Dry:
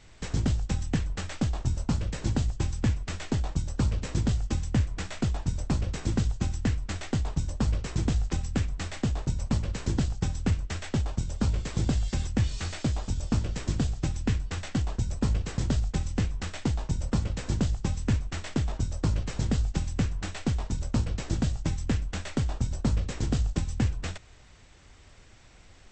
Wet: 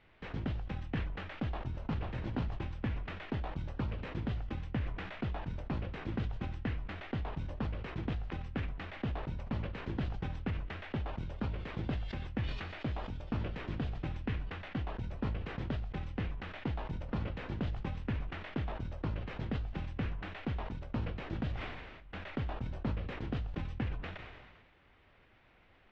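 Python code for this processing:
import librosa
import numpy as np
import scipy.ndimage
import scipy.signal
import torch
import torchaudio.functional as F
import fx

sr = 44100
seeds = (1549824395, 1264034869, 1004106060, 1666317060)

y = fx.echo_throw(x, sr, start_s=1.43, length_s=0.56, ms=490, feedback_pct=15, wet_db=-1.0)
y = fx.edit(y, sr, fx.room_tone_fill(start_s=21.54, length_s=0.53, crossfade_s=0.16), tone=tone)
y = scipy.signal.sosfilt(scipy.signal.butter(4, 3000.0, 'lowpass', fs=sr, output='sos'), y)
y = fx.low_shelf(y, sr, hz=150.0, db=-10.0)
y = fx.sustainer(y, sr, db_per_s=37.0)
y = y * librosa.db_to_amplitude(-6.0)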